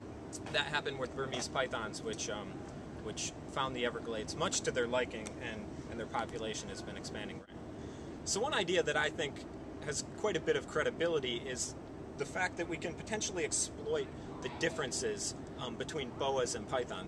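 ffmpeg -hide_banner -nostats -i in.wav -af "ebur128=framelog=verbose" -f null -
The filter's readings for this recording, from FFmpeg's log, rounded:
Integrated loudness:
  I:         -37.0 LUFS
  Threshold: -47.1 LUFS
Loudness range:
  LRA:         3.5 LU
  Threshold: -57.1 LUFS
  LRA low:   -38.7 LUFS
  LRA high:  -35.2 LUFS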